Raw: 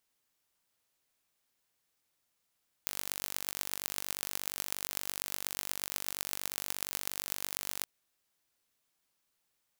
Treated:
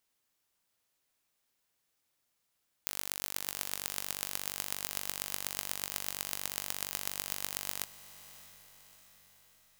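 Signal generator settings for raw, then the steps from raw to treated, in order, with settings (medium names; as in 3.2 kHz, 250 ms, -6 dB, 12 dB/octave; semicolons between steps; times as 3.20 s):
pulse train 48.5 per s, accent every 6, -5 dBFS 4.97 s
echo that smears into a reverb 641 ms, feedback 52%, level -15.5 dB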